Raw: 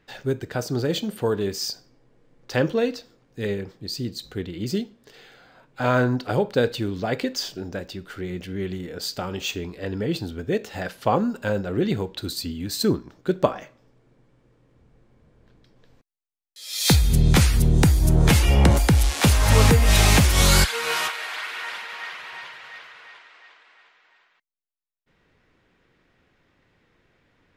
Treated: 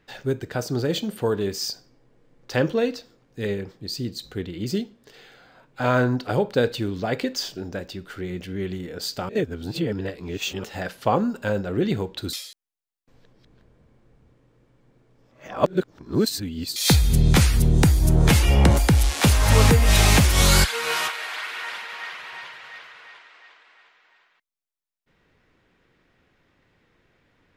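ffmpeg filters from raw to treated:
-filter_complex "[0:a]asplit=5[a][b][c][d][e];[a]atrim=end=9.292[f];[b]atrim=start=9.288:end=10.642,asetpts=PTS-STARTPTS,areverse[g];[c]atrim=start=10.638:end=12.332[h];[d]atrim=start=12.328:end=16.762,asetpts=PTS-STARTPTS,areverse[i];[e]atrim=start=16.758[j];[f][g]acrossfade=d=0.004:c1=hsin:c2=hsin[k];[k][h]acrossfade=d=0.004:c1=hsin:c2=hsin[l];[l][i]acrossfade=d=0.004:c1=hsin:c2=hsin[m];[m][j]acrossfade=d=0.004:c1=hsin:c2=hsin"

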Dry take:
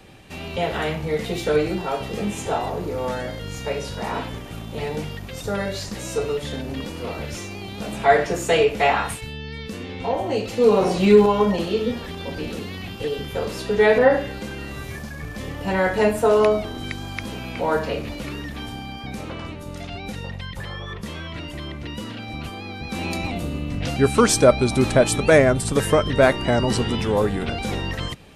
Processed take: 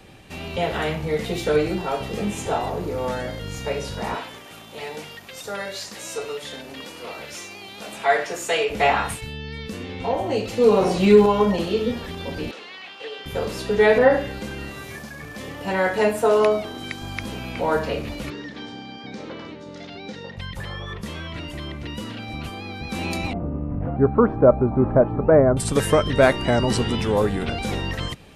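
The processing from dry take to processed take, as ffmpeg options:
-filter_complex "[0:a]asettb=1/sr,asplit=3[a][b][c];[a]atrim=end=4.154[d];[b]atrim=start=4.15:end=8.7,asetpts=PTS-STARTPTS,afade=t=in:d=0.004:c=qsin,afade=t=out:st=4.546:d=0.004:c=qsin,highpass=f=780:p=1[e];[c]atrim=start=8.696[f];[d][e]acrossfade=d=0.004:c1=hsin:c2=qsin[g];[g][f]acrossfade=d=0.004:c1=qsin:c2=hsin,asettb=1/sr,asplit=3[h][i][j];[h]atrim=end=12.514[k];[i]atrim=start=12.51:end=13.26,asetpts=PTS-STARTPTS,afade=t=in:d=0.004:c=qsin,afade=t=out:st=0.746:d=0.004:c=qsin,highpass=740,lowpass=4.4k[l];[j]atrim=start=13.256[m];[k][l]acrossfade=d=0.004:c1=hsin:c2=qsin[n];[n][m]acrossfade=d=0.004:c1=qsin:c2=hsin,asettb=1/sr,asplit=3[o][p][q];[o]atrim=end=14.704[r];[p]atrim=start=14.7:end=17.02,asetpts=PTS-STARTPTS,afade=t=in:d=0.004:c=qsin,afade=t=out:st=2.316:d=0.004:c=qsin,highpass=f=220:p=1[s];[q]atrim=start=17.016[t];[r][s]acrossfade=d=0.004:c1=hsin:c2=qsin[u];[u][t]acrossfade=d=0.004:c1=qsin:c2=hsin,asettb=1/sr,asplit=3[v][w][x];[v]atrim=end=18.304[y];[w]atrim=start=18.3:end=20.37,asetpts=PTS-STARTPTS,afade=t=in:d=0.004:c=qsin,afade=t=out:st=2.066:d=0.004:c=qsin,highpass=210,equalizer=f=470:t=q:w=4:g=3,equalizer=f=710:t=q:w=4:g=-6,equalizer=f=1.2k:t=q:w=4:g=-5,equalizer=f=2.6k:t=q:w=4:g=-7,lowpass=f=5.8k:w=0.5412,lowpass=f=5.8k:w=1.3066[z];[x]atrim=start=20.366[aa];[y][z]acrossfade=d=0.004:c1=hsin:c2=qsin[ab];[ab][aa]acrossfade=d=0.004:c1=qsin:c2=hsin,asettb=1/sr,asplit=3[ac][ad][ae];[ac]atrim=end=23.334[af];[ad]atrim=start=23.33:end=25.57,asetpts=PTS-STARTPTS,afade=t=in:d=0.004:c=qsin,afade=t=out:st=2.236:d=0.004:c=qsin,lowpass=f=1.2k:w=0.5412,lowpass=f=1.2k:w=1.3066[ag];[ae]atrim=start=25.566[ah];[af][ag]acrossfade=d=0.004:c1=hsin:c2=qsin[ai];[ai][ah]acrossfade=d=0.004:c1=qsin:c2=hsin"

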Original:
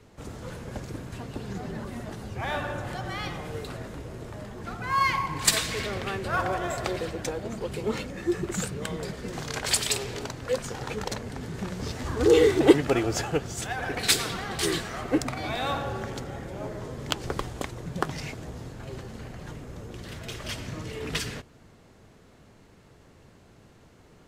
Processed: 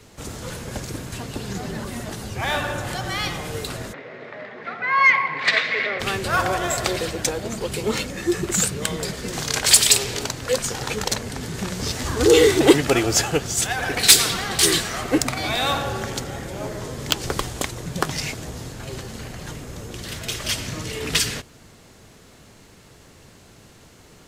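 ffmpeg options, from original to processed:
-filter_complex "[0:a]asplit=3[a][b][c];[a]afade=t=out:st=3.92:d=0.02[d];[b]highpass=f=190:w=0.5412,highpass=f=190:w=1.3066,equalizer=f=200:t=q:w=4:g=-10,equalizer=f=320:t=q:w=4:g=-10,equalizer=f=570:t=q:w=4:g=3,equalizer=f=920:t=q:w=4:g=-4,equalizer=f=2k:t=q:w=4:g=9,equalizer=f=3k:t=q:w=4:g=-6,lowpass=f=3.2k:w=0.5412,lowpass=f=3.2k:w=1.3066,afade=t=in:st=3.92:d=0.02,afade=t=out:st=5.99:d=0.02[e];[c]afade=t=in:st=5.99:d=0.02[f];[d][e][f]amix=inputs=3:normalize=0,highshelf=f=2.8k:g=11,acontrast=43,volume=-1dB"

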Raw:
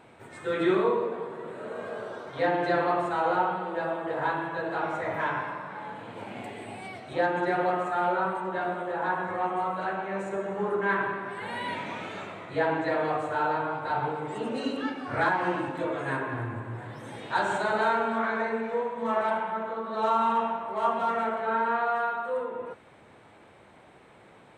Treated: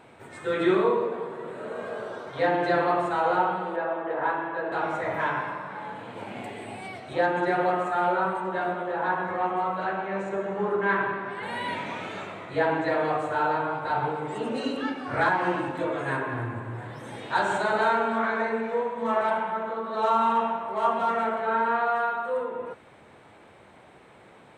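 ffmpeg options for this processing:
-filter_complex "[0:a]asettb=1/sr,asplit=3[a][b][c];[a]atrim=end=3.764[d];[b]atrim=start=3.76:end=4.72,asetpts=PTS-STARTPTS,afade=t=in:d=0.004:c=qsin,afade=t=out:st=0.956:d=0.004:c=qsin,highpass=240,lowpass=2.4k[e];[c]atrim=start=4.716[f];[d][e]acrossfade=d=0.004:c1=hsin:c2=qsin[g];[g][f]acrossfade=d=0.004:c1=qsin:c2=hsin,asettb=1/sr,asplit=3[h][i][j];[h]atrim=end=8.724[k];[i]atrim=start=8.72:end=11.43,asetpts=PTS-STARTPTS,afade=t=in:d=0.004:c=qsin,afade=t=out:st=2.706:d=0.004:c=qsin,lowpass=6k[l];[j]atrim=start=11.426[m];[k][l]acrossfade=d=0.004:c1=hsin:c2=qsin[n];[n][m]acrossfade=d=0.004:c1=qsin:c2=hsin,bandreject=f=54.39:t=h:w=4,bandreject=f=108.78:t=h:w=4,bandreject=f=163.17:t=h:w=4,bandreject=f=217.56:t=h:w=4,bandreject=f=271.95:t=h:w=4,bandreject=f=326.34:t=h:w=4,volume=2dB"

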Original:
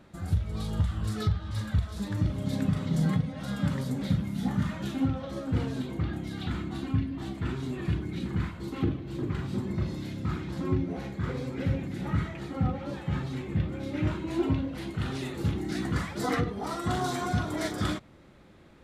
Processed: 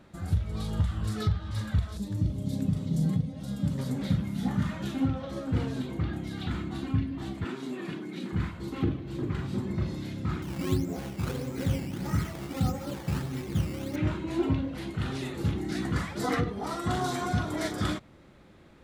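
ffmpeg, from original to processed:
-filter_complex "[0:a]asettb=1/sr,asplit=3[a][b][c];[a]atrim=end=1.974[d];[b]atrim=start=1.97:end=3.79,asetpts=PTS-STARTPTS,afade=t=in:d=0.004:c=qsin,afade=t=out:st=1.816:d=0.004:c=qsin,equalizer=f=1.5k:t=o:w=2.2:g=-14[e];[c]atrim=start=3.786[f];[d][e]acrossfade=d=0.004:c1=hsin:c2=qsin[g];[g][f]acrossfade=d=0.004:c1=qsin:c2=hsin,asettb=1/sr,asplit=3[h][i][j];[h]atrim=end=7.444[k];[i]atrim=start=7.44:end=8.33,asetpts=PTS-STARTPTS,afade=t=in:d=0.004:c=qsin,afade=t=out:st=0.886:d=0.004:c=qsin,highpass=f=200:w=0.5412,highpass=f=200:w=1.3066[l];[j]atrim=start=8.326[m];[k][l]acrossfade=d=0.004:c1=hsin:c2=qsin[n];[n][m]acrossfade=d=0.004:c1=qsin:c2=hsin,asettb=1/sr,asplit=3[o][p][q];[o]atrim=end=10.424[r];[p]atrim=start=10.42:end=13.96,asetpts=PTS-STARTPTS,afade=t=in:d=0.004:c=qsin,afade=t=out:st=3.536:d=0.004:c=qsin,acrusher=samples=12:mix=1:aa=0.000001:lfo=1:lforange=12:lforate=1.6[s];[q]atrim=start=13.956[t];[r][s]acrossfade=d=0.004:c1=hsin:c2=qsin[u];[u][t]acrossfade=d=0.004:c1=qsin:c2=hsin"

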